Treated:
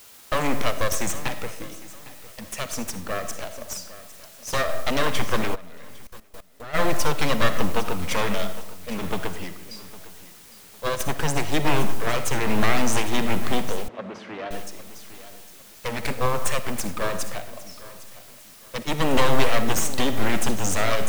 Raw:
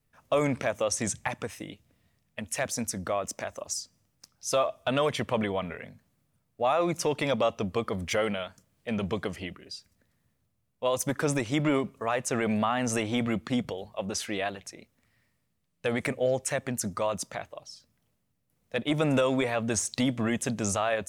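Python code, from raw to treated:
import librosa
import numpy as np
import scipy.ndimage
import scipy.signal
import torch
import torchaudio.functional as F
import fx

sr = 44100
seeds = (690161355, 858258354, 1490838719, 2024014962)

y = np.minimum(x, 2.0 * 10.0 ** (-30.0 / 20.0) - x)
y = fx.echo_feedback(y, sr, ms=806, feedback_pct=38, wet_db=-14)
y = fx.rev_freeverb(y, sr, rt60_s=1.1, hf_ratio=0.45, predelay_ms=20, drr_db=8.0)
y = np.sign(y) * np.maximum(np.abs(y) - 10.0 ** (-53.5 / 20.0), 0.0)
y = fx.quant_dither(y, sr, seeds[0], bits=8, dither='triangular')
y = fx.level_steps(y, sr, step_db=18, at=(5.54, 6.73), fade=0.02)
y = fx.bandpass_edges(y, sr, low_hz=160.0, high_hz=2200.0, at=(13.88, 14.51))
y = fx.upward_expand(y, sr, threshold_db=-34.0, expansion=1.5)
y = y * librosa.db_to_amplitude(8.5)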